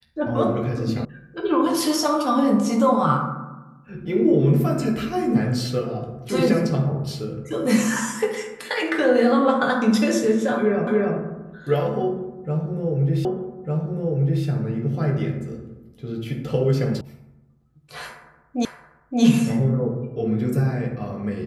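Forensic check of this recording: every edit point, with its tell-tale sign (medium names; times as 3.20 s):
1.05 s: sound stops dead
10.87 s: repeat of the last 0.29 s
13.25 s: repeat of the last 1.2 s
17.01 s: sound stops dead
18.65 s: repeat of the last 0.57 s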